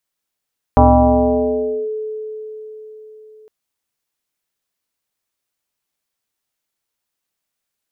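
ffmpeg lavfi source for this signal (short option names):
-f lavfi -i "aevalsrc='0.562*pow(10,-3*t/4.46)*sin(2*PI*432*t+2.9*clip(1-t/1.12,0,1)*sin(2*PI*0.42*432*t))':d=2.71:s=44100"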